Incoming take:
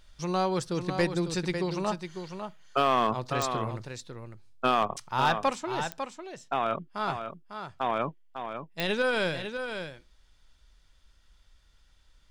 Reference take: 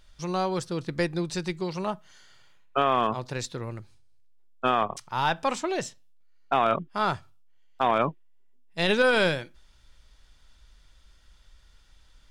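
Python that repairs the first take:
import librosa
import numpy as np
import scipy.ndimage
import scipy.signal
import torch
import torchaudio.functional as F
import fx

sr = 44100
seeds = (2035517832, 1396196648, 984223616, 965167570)

y = fx.fix_declip(x, sr, threshold_db=-16.0)
y = fx.fix_declick_ar(y, sr, threshold=10.0)
y = fx.fix_echo_inverse(y, sr, delay_ms=550, level_db=-8.0)
y = fx.fix_level(y, sr, at_s=5.5, step_db=5.5)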